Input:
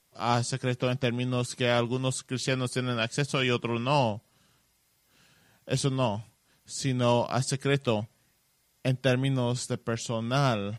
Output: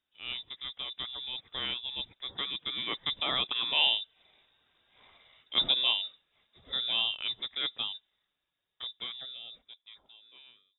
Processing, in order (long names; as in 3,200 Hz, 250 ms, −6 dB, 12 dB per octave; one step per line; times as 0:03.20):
fade-out on the ending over 2.64 s
source passing by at 0:04.86, 13 m/s, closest 9.6 metres
voice inversion scrambler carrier 3,700 Hz
level +3 dB